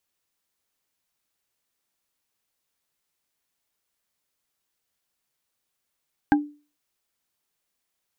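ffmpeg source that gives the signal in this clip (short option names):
-f lavfi -i "aevalsrc='0.237*pow(10,-3*t/0.35)*sin(2*PI*294*t)+0.188*pow(10,-3*t/0.104)*sin(2*PI*810.6*t)+0.15*pow(10,-3*t/0.046)*sin(2*PI*1588.8*t)':d=0.45:s=44100"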